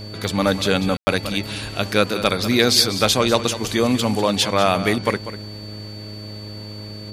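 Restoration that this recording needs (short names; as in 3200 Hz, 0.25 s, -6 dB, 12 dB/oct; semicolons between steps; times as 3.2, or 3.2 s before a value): de-hum 104.8 Hz, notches 6; notch 4500 Hz, Q 30; room tone fill 0.97–1.07; inverse comb 0.195 s -12.5 dB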